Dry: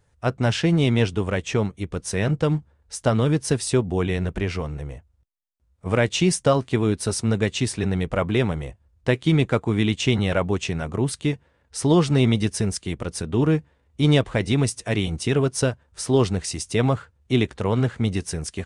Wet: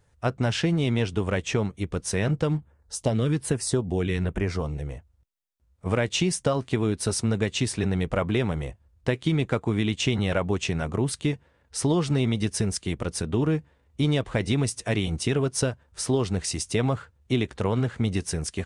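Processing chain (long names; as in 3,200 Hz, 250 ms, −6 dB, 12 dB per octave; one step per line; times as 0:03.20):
0:02.57–0:04.87: auto-filter notch saw down 1.2 Hz 500–6,800 Hz
downward compressor 5 to 1, threshold −20 dBFS, peak gain reduction 7 dB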